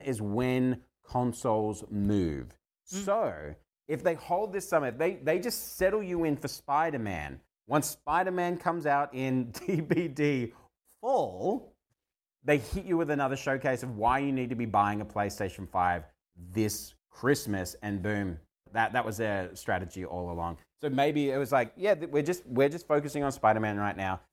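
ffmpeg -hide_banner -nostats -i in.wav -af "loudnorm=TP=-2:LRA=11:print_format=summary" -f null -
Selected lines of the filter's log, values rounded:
Input Integrated:    -30.3 LUFS
Input True Peak:     -10.7 dBTP
Input LRA:             3.4 LU
Input Threshold:     -40.6 LUFS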